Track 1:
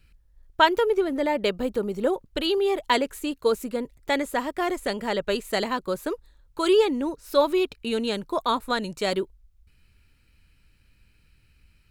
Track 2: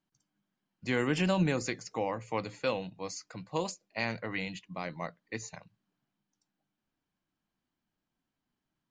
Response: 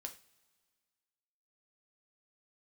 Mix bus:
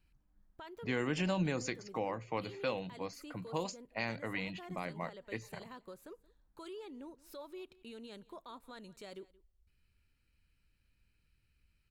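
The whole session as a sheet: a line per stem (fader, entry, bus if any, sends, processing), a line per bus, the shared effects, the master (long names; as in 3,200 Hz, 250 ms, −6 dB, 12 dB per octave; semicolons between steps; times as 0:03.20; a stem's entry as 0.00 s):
−15.5 dB, 0.00 s, send −13 dB, echo send −20.5 dB, downward compressor 2 to 1, threshold −36 dBFS, peak gain reduction 13 dB; brickwall limiter −25.5 dBFS, peak gain reduction 9 dB
+1.0 dB, 0.00 s, no send, no echo send, low-pass that shuts in the quiet parts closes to 1,300 Hz, open at −27 dBFS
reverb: on, pre-delay 3 ms
echo: single-tap delay 176 ms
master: downward compressor 1.5 to 1, threshold −41 dBFS, peak gain reduction 7 dB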